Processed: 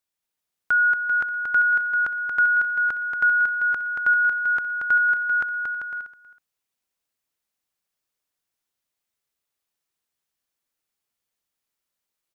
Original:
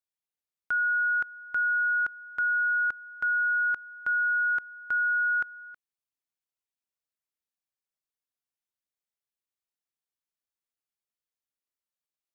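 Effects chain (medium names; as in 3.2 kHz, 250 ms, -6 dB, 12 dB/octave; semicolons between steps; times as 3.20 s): bouncing-ball echo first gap 230 ms, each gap 0.7×, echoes 5; trim +7.5 dB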